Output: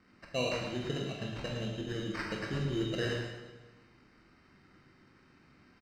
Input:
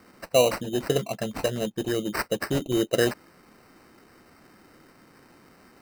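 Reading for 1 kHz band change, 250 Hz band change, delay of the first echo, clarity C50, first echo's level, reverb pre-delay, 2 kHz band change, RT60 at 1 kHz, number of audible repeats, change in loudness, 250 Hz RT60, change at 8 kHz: −10.5 dB, −8.0 dB, 111 ms, 1.0 dB, −6.5 dB, 21 ms, −6.5 dB, 1.2 s, 1, −9.5 dB, 1.3 s, −15.5 dB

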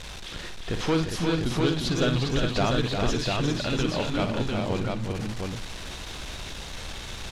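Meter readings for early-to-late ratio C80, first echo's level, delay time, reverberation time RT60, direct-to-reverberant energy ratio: no reverb audible, −9.0 dB, 56 ms, no reverb audible, no reverb audible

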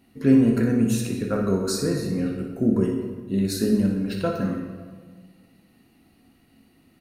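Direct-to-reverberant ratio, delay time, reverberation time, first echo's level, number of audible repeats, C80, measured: 0.5 dB, 60 ms, 1.5 s, −8.0 dB, 1, 6.0 dB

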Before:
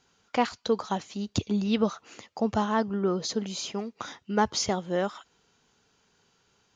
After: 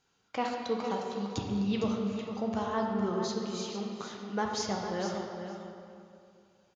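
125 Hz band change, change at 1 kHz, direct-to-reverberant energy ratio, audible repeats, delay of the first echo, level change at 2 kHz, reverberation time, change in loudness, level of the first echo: −3.5 dB, −4.5 dB, −1.0 dB, 2, 457 ms, −5.0 dB, 2.4 s, −4.5 dB, −9.0 dB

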